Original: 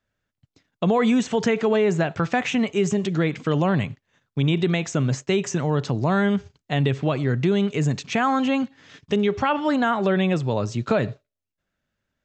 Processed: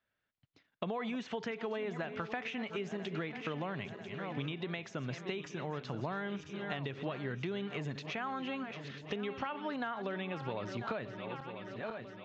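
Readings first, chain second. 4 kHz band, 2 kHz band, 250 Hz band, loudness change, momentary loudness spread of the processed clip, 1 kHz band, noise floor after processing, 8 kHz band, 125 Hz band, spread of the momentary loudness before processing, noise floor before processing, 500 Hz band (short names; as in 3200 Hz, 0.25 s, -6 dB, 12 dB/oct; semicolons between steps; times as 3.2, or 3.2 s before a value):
-13.0 dB, -12.5 dB, -18.0 dB, -17.0 dB, 5 LU, -14.5 dB, -78 dBFS, -23.0 dB, -19.0 dB, 5 LU, -84 dBFS, -16.0 dB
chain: regenerating reverse delay 0.496 s, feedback 64%, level -13 dB; tilt +3 dB/oct; compressor 10:1, threshold -30 dBFS, peak gain reduction 14.5 dB; air absorption 290 m; gain -3 dB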